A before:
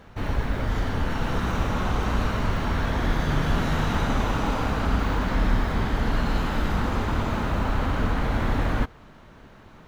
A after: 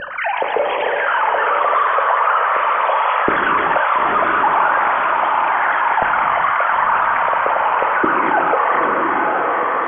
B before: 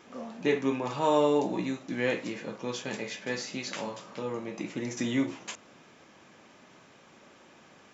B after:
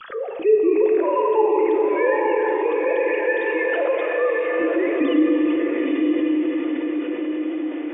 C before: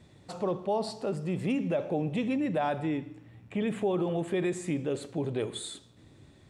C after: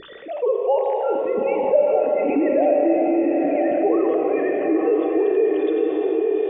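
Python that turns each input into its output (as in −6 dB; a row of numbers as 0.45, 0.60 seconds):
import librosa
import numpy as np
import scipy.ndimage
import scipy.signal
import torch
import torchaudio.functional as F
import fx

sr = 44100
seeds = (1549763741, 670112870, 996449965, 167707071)

p1 = fx.sine_speech(x, sr)
p2 = fx.env_lowpass_down(p1, sr, base_hz=2000.0, full_db=-21.0)
p3 = fx.high_shelf(p2, sr, hz=2500.0, db=-11.5)
p4 = fx.hum_notches(p3, sr, base_hz=60, count=5)
p5 = fx.rider(p4, sr, range_db=4, speed_s=0.5)
p6 = p4 + (p5 * librosa.db_to_amplitude(-1.5))
p7 = fx.phaser_stages(p6, sr, stages=12, low_hz=260.0, high_hz=1600.0, hz=0.43, feedback_pct=20)
p8 = p7 + fx.echo_diffused(p7, sr, ms=913, feedback_pct=41, wet_db=-3.5, dry=0)
p9 = fx.rev_gated(p8, sr, seeds[0], gate_ms=490, shape='flat', drr_db=2.0)
p10 = fx.env_flatten(p9, sr, amount_pct=50)
y = p10 * librosa.db_to_amplitude(2.0)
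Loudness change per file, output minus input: +10.5, +10.5, +11.5 LU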